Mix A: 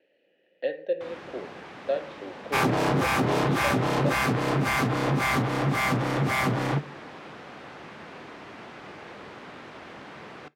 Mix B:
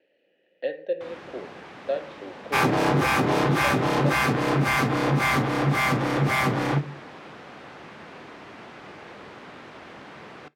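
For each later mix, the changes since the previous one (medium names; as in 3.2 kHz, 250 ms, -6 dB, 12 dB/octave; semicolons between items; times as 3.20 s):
second sound: send +9.5 dB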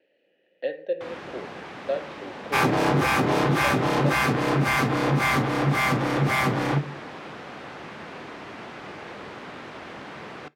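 first sound +4.0 dB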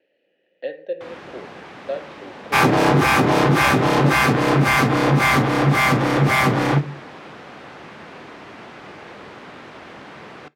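second sound +6.0 dB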